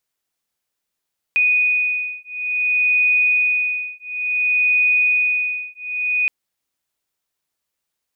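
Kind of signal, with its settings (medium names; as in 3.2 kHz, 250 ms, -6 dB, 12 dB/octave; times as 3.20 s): beating tones 2.48 kHz, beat 0.57 Hz, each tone -18.5 dBFS 4.92 s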